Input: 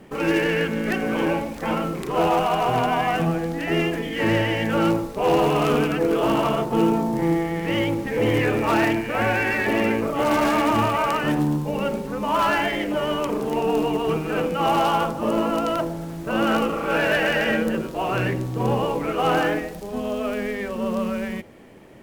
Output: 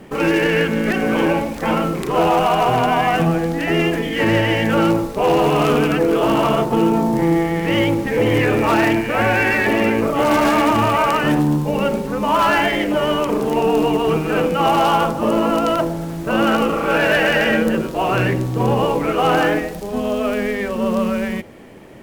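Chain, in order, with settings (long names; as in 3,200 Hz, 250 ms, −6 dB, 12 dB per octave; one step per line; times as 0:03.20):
brickwall limiter −14 dBFS, peak gain reduction 4.5 dB
level +6 dB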